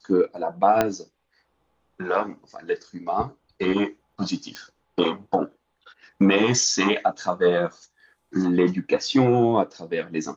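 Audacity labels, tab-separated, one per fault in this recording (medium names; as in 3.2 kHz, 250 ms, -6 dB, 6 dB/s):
0.810000	0.810000	pop -6 dBFS
4.550000	4.550000	pop -19 dBFS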